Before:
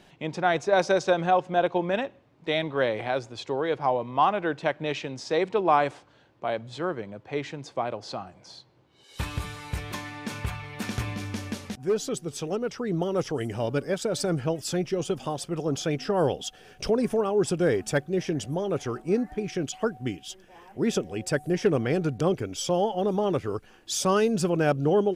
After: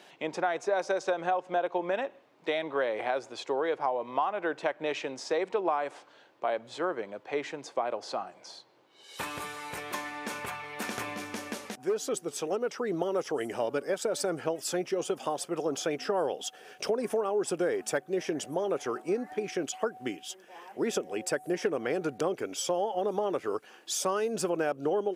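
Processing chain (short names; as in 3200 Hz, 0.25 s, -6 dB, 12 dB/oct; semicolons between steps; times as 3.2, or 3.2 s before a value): HPF 390 Hz 12 dB/oct; compressor 6:1, threshold -28 dBFS, peak gain reduction 12 dB; dynamic EQ 4000 Hz, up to -6 dB, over -50 dBFS, Q 0.82; gain +3 dB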